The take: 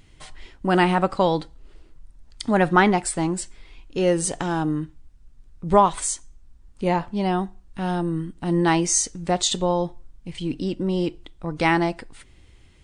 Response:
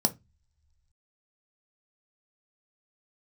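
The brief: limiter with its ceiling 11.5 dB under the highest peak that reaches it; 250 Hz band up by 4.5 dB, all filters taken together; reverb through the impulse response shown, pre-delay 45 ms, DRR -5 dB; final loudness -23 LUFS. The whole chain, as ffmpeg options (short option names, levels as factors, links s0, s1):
-filter_complex "[0:a]equalizer=f=250:t=o:g=7.5,alimiter=limit=0.211:level=0:latency=1,asplit=2[s0][s1];[1:a]atrim=start_sample=2205,adelay=45[s2];[s1][s2]afir=irnorm=-1:irlink=0,volume=0.708[s3];[s0][s3]amix=inputs=2:normalize=0,volume=0.266"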